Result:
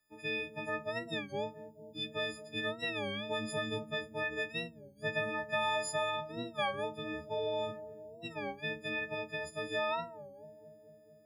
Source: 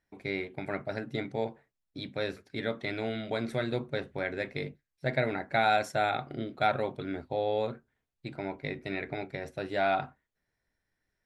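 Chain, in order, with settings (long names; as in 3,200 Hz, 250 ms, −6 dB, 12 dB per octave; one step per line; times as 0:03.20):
every partial snapped to a pitch grid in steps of 6 semitones
downward compressor 2.5 to 1, threshold −27 dBFS, peak gain reduction 6.5 dB
on a send: bucket-brigade delay 223 ms, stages 1,024, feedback 78%, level −12 dB
on the sum: wow of a warped record 33 1/3 rpm, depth 160 cents
level −5 dB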